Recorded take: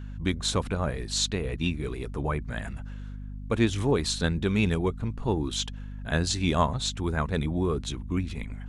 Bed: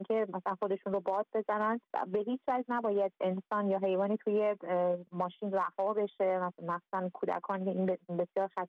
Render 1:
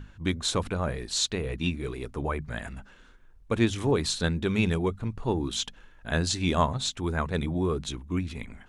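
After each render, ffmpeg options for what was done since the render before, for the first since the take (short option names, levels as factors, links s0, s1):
-af "bandreject=f=50:t=h:w=6,bandreject=f=100:t=h:w=6,bandreject=f=150:t=h:w=6,bandreject=f=200:t=h:w=6,bandreject=f=250:t=h:w=6"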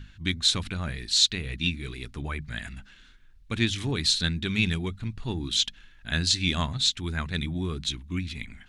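-af "equalizer=f=500:t=o:w=1:g=-12,equalizer=f=1000:t=o:w=1:g=-7,equalizer=f=2000:t=o:w=1:g=4,equalizer=f=4000:t=o:w=1:g=8"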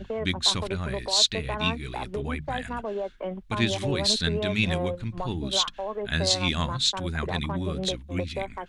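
-filter_complex "[1:a]volume=0.944[s0];[0:a][s0]amix=inputs=2:normalize=0"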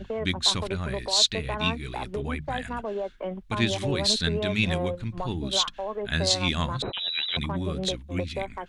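-filter_complex "[0:a]asettb=1/sr,asplit=3[s0][s1][s2];[s0]atrim=end=6.824[s3];[s1]atrim=start=6.82:end=7.37,asetpts=PTS-STARTPTS,afade=t=in:d=0.004:c=qsin,afade=t=out:st=0.546:d=0.004:c=qsin,lowpass=f=3400:t=q:w=0.5098,lowpass=f=3400:t=q:w=0.6013,lowpass=f=3400:t=q:w=0.9,lowpass=f=3400:t=q:w=2.563,afreqshift=-4000[s4];[s2]atrim=start=7.366[s5];[s3][s4]acrossfade=d=0.004:c1=hsin:c2=qsin[s6];[s6][s5]acrossfade=d=0.004:c1=qsin:c2=hsin"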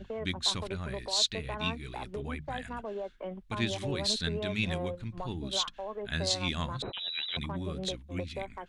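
-af "volume=0.473"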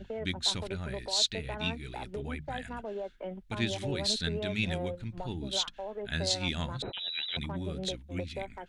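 -af "bandreject=f=1100:w=5.2"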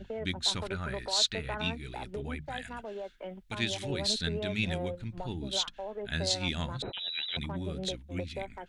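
-filter_complex "[0:a]asettb=1/sr,asplit=3[s0][s1][s2];[s0]atrim=end=0.564[s3];[s1]atrim=start=0.56:end=1.62,asetpts=PTS-STARTPTS,afade=t=in:d=0.004:c=qsin,afade=t=out:st=1.056:d=0.004:c=qsin,equalizer=f=1300:t=o:w=0.87:g=9[s4];[s2]atrim=start=1.616[s5];[s3][s4]acrossfade=d=0.004:c1=hsin:c2=qsin[s6];[s6][s5]acrossfade=d=0.004:c1=qsin:c2=hsin,asettb=1/sr,asplit=3[s7][s8][s9];[s7]atrim=end=2.464[s10];[s8]atrim=start=2.46:end=3.9,asetpts=PTS-STARTPTS,afade=t=in:d=0.004:c=qsin,afade=t=out:st=1.436:d=0.004:c=qsin,tiltshelf=f=1200:g=-3.5[s11];[s9]atrim=start=3.896[s12];[s10][s11]acrossfade=d=0.004:c1=hsin:c2=qsin[s13];[s13][s12]acrossfade=d=0.004:c1=qsin:c2=hsin"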